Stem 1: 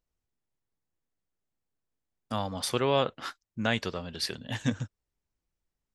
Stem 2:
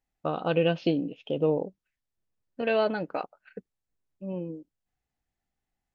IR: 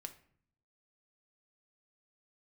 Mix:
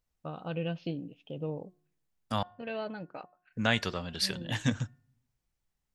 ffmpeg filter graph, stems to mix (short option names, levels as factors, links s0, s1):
-filter_complex "[0:a]volume=1.12,asplit=3[s0][s1][s2];[s0]atrim=end=2.43,asetpts=PTS-STARTPTS,afade=t=out:st=2.426:d=0.004:c=hsin[s3];[s1]atrim=start=2.43:end=3.52,asetpts=PTS-STARTPTS,volume=0[s4];[s2]atrim=start=3.52,asetpts=PTS-STARTPTS,afade=t=in:d=0.004:c=hsin[s5];[s3][s4][s5]concat=n=3:v=0:a=1,asplit=2[s6][s7];[s7]volume=0.237[s8];[1:a]equalizer=f=110:t=o:w=1.7:g=9.5,volume=0.282,asplit=2[s9][s10];[s10]volume=0.158[s11];[2:a]atrim=start_sample=2205[s12];[s8][s11]amix=inputs=2:normalize=0[s13];[s13][s12]afir=irnorm=-1:irlink=0[s14];[s6][s9][s14]amix=inputs=3:normalize=0,equalizer=f=380:t=o:w=1.7:g=-4,bandreject=f=359.1:t=h:w=4,bandreject=f=718.2:t=h:w=4,bandreject=f=1077.3:t=h:w=4,bandreject=f=1436.4:t=h:w=4,bandreject=f=1795.5:t=h:w=4"